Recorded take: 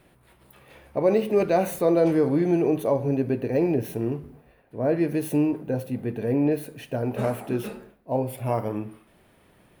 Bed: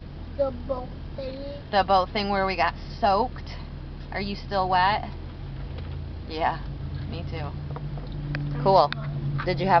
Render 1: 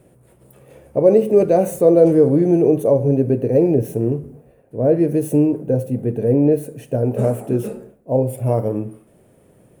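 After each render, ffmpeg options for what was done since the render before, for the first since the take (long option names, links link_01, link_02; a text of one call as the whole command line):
ffmpeg -i in.wav -af "equalizer=frequency=125:width_type=o:width=1:gain=9,equalizer=frequency=250:width_type=o:width=1:gain=3,equalizer=frequency=500:width_type=o:width=1:gain=10,equalizer=frequency=1000:width_type=o:width=1:gain=-4,equalizer=frequency=2000:width_type=o:width=1:gain=-4,equalizer=frequency=4000:width_type=o:width=1:gain=-8,equalizer=frequency=8000:width_type=o:width=1:gain=9" out.wav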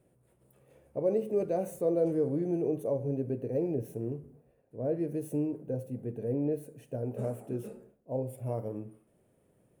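ffmpeg -i in.wav -af "volume=-16dB" out.wav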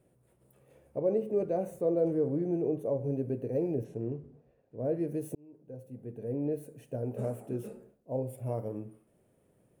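ffmpeg -i in.wav -filter_complex "[0:a]asettb=1/sr,asplit=3[link_01][link_02][link_03];[link_01]atrim=end=0.994[link_04];[link_02]atrim=start=0.99:end=3.04,asetpts=PTS-STARTPTS,afade=type=in:duration=0.004:curve=qsin,afade=type=out:start_time=2.046:duration=0.004:curve=qsin,highshelf=frequency=2800:gain=-8.5[link_05];[link_03]atrim=start=3.036[link_06];[link_04][link_05]acrossfade=duration=0.004:curve1=hsin:curve2=qsin[link_07];[link_07][link_06]acrossfade=duration=0.004:curve1=qsin:curve2=hsin,asplit=3[link_08][link_09][link_10];[link_08]afade=type=out:start_time=3.83:duration=0.02[link_11];[link_09]lowpass=5100,afade=type=in:start_time=3.83:duration=0.02,afade=type=out:start_time=4.77:duration=0.02[link_12];[link_10]afade=type=in:start_time=4.77:duration=0.02[link_13];[link_11][link_12][link_13]amix=inputs=3:normalize=0,asplit=2[link_14][link_15];[link_14]atrim=end=5.35,asetpts=PTS-STARTPTS,afade=type=out:start_time=5.346:duration=0.004:curve=hsin[link_16];[link_15]atrim=start=5.35,asetpts=PTS-STARTPTS,afade=type=in:duration=1.36[link_17];[link_16][link_17]concat=n=2:v=0:a=1" out.wav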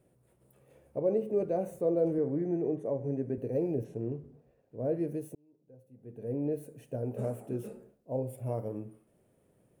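ffmpeg -i in.wav -filter_complex "[0:a]asettb=1/sr,asplit=3[link_01][link_02][link_03];[link_01]atrim=end=2.184[link_04];[link_02]atrim=start=2.18:end=3.38,asetpts=PTS-STARTPTS,afade=type=in:duration=0.004:curve=qsin,afade=type=out:start_time=1.196:duration=0.004:curve=qsin,highpass=120,equalizer=frequency=510:width_type=q:width=4:gain=-3,equalizer=frequency=1900:width_type=q:width=4:gain=8,equalizer=frequency=2800:width_type=q:width=4:gain=-6,equalizer=frequency=4100:width_type=q:width=4:gain=-7,lowpass=frequency=8800:width=0.5412,lowpass=frequency=8800:width=1.3066[link_05];[link_03]atrim=start=3.376[link_06];[link_04][link_05]acrossfade=duration=0.004:curve1=hsin:curve2=qsin[link_07];[link_07][link_06]acrossfade=duration=0.004:curve1=qsin:curve2=hsin,asplit=3[link_08][link_09][link_10];[link_08]atrim=end=5.42,asetpts=PTS-STARTPTS,afade=type=out:start_time=5.08:duration=0.34:silence=0.281838[link_11];[link_09]atrim=start=5.42:end=5.96,asetpts=PTS-STARTPTS,volume=-11dB[link_12];[link_10]atrim=start=5.96,asetpts=PTS-STARTPTS,afade=type=in:duration=0.34:silence=0.281838[link_13];[link_11][link_12][link_13]concat=n=3:v=0:a=1" out.wav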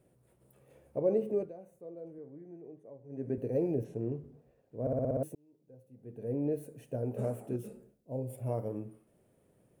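ffmpeg -i in.wav -filter_complex "[0:a]asettb=1/sr,asplit=3[link_01][link_02][link_03];[link_01]atrim=end=7.564[link_04];[link_02]atrim=start=7.56:end=8.3,asetpts=PTS-STARTPTS,afade=type=in:duration=0.004:curve=qsin,afade=type=out:start_time=0.736:duration=0.004:curve=qsin,equalizer=frequency=990:width_type=o:width=2.8:gain=-7.5[link_05];[link_03]atrim=start=8.296[link_06];[link_04][link_05]acrossfade=duration=0.004:curve1=hsin:curve2=qsin[link_07];[link_07][link_06]acrossfade=duration=0.004:curve1=qsin:curve2=hsin,asplit=10[link_08][link_09][link_10][link_11][link_12][link_13][link_14][link_15][link_16][link_17];[link_08]atrim=end=1.53,asetpts=PTS-STARTPTS,afade=type=out:start_time=1.31:duration=0.22:silence=0.125893[link_18];[link_09]atrim=start=1.53:end=3.09,asetpts=PTS-STARTPTS,volume=-18dB[link_19];[link_10]atrim=start=3.09:end=4.872,asetpts=PTS-STARTPTS,afade=type=in:duration=0.22:silence=0.125893[link_20];[link_11]atrim=start=4.808:end=4.872[link_21];[link_12]atrim=start=4.808:end=4.872[link_22];[link_13]atrim=start=4.808:end=4.872[link_23];[link_14]atrim=start=4.808:end=4.872[link_24];[link_15]atrim=start=4.808:end=4.872[link_25];[link_16]atrim=start=4.808:end=4.872[link_26];[link_17]atrim=start=5.228[link_27];[link_18][link_19][link_20]concat=n=3:v=0:a=1[link_28];[link_28][link_21]acrossfade=duration=0.004:curve1=hsin:curve2=hsin[link_29];[link_29][link_22]acrossfade=duration=0.004:curve1=hsin:curve2=hsin[link_30];[link_30][link_23]acrossfade=duration=0.004:curve1=hsin:curve2=hsin[link_31];[link_31][link_24]acrossfade=duration=0.004:curve1=hsin:curve2=hsin[link_32];[link_32][link_25]acrossfade=duration=0.004:curve1=hsin:curve2=hsin[link_33];[link_33][link_26]acrossfade=duration=0.004:curve1=hsin:curve2=hsin[link_34];[link_34][link_27]acrossfade=duration=0.004:curve1=hsin:curve2=hsin" out.wav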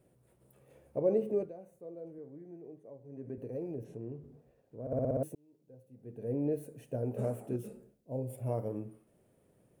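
ffmpeg -i in.wav -filter_complex "[0:a]asplit=3[link_01][link_02][link_03];[link_01]afade=type=out:start_time=3.09:duration=0.02[link_04];[link_02]acompressor=threshold=-50dB:ratio=1.5:attack=3.2:release=140:knee=1:detection=peak,afade=type=in:start_time=3.09:duration=0.02,afade=type=out:start_time=4.91:duration=0.02[link_05];[link_03]afade=type=in:start_time=4.91:duration=0.02[link_06];[link_04][link_05][link_06]amix=inputs=3:normalize=0" out.wav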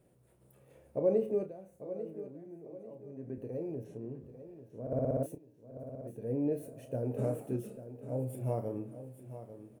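ffmpeg -i in.wav -filter_complex "[0:a]asplit=2[link_01][link_02];[link_02]adelay=31,volume=-9.5dB[link_03];[link_01][link_03]amix=inputs=2:normalize=0,aecho=1:1:844|1688|2532|3376:0.237|0.0925|0.0361|0.0141" out.wav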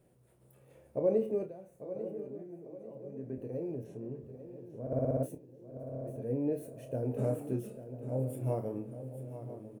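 ffmpeg -i in.wav -filter_complex "[0:a]asplit=2[link_01][link_02];[link_02]adelay=23,volume=-12dB[link_03];[link_01][link_03]amix=inputs=2:normalize=0,asplit=2[link_04][link_05];[link_05]adelay=993,lowpass=frequency=990:poles=1,volume=-13dB,asplit=2[link_06][link_07];[link_07]adelay=993,lowpass=frequency=990:poles=1,volume=0.54,asplit=2[link_08][link_09];[link_09]adelay=993,lowpass=frequency=990:poles=1,volume=0.54,asplit=2[link_10][link_11];[link_11]adelay=993,lowpass=frequency=990:poles=1,volume=0.54,asplit=2[link_12][link_13];[link_13]adelay=993,lowpass=frequency=990:poles=1,volume=0.54,asplit=2[link_14][link_15];[link_15]adelay=993,lowpass=frequency=990:poles=1,volume=0.54[link_16];[link_04][link_06][link_08][link_10][link_12][link_14][link_16]amix=inputs=7:normalize=0" out.wav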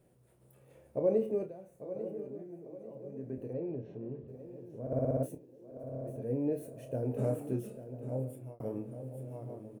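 ffmpeg -i in.wav -filter_complex "[0:a]asettb=1/sr,asplit=3[link_01][link_02][link_03];[link_01]atrim=end=3.534[link_04];[link_02]atrim=start=3.53:end=4.28,asetpts=PTS-STARTPTS,afade=type=in:duration=0.004:curve=qsin,afade=type=out:start_time=0.746:duration=0.004:curve=qsin,lowpass=frequency=4200:width=0.5412,lowpass=frequency=4200:width=1.3066[link_05];[link_03]atrim=start=4.276[link_06];[link_04][link_05]acrossfade=duration=0.004:curve1=hsin:curve2=qsin[link_07];[link_07][link_06]acrossfade=duration=0.004:curve1=qsin:curve2=hsin,asettb=1/sr,asplit=3[link_08][link_09][link_10];[link_08]atrim=end=5.434[link_11];[link_09]atrim=start=5.43:end=5.84,asetpts=PTS-STARTPTS,afade=type=in:duration=0.004:curve=qsin,afade=type=out:start_time=0.406:duration=0.004:curve=qsin,equalizer=frequency=130:width=1.5:gain=-9[link_12];[link_10]atrim=start=5.836[link_13];[link_11][link_12]acrossfade=duration=0.004:curve1=hsin:curve2=qsin[link_14];[link_14][link_13]acrossfade=duration=0.004:curve1=qsin:curve2=hsin,asplit=2[link_15][link_16];[link_15]atrim=end=8.6,asetpts=PTS-STARTPTS,afade=type=out:start_time=8.06:duration=0.54[link_17];[link_16]atrim=start=8.6,asetpts=PTS-STARTPTS,afade=type=in:duration=0.004:curve=hsin[link_18];[link_17][link_18]concat=n=2:v=0:a=1" out.wav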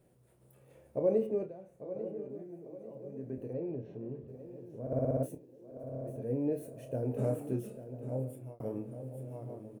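ffmpeg -i in.wav -filter_complex "[0:a]asettb=1/sr,asplit=3[link_01][link_02][link_03];[link_01]atrim=end=1.274[link_04];[link_02]atrim=start=1.27:end=2.3,asetpts=PTS-STARTPTS,afade=type=in:duration=0.004:curve=qsin,afade=type=out:start_time=1.026:duration=0.004:curve=qsin,highshelf=frequency=7100:gain=-11[link_05];[link_03]atrim=start=2.296[link_06];[link_04][link_05]acrossfade=duration=0.004:curve1=hsin:curve2=qsin[link_07];[link_07][link_06]acrossfade=duration=0.004:curve1=qsin:curve2=hsin" out.wav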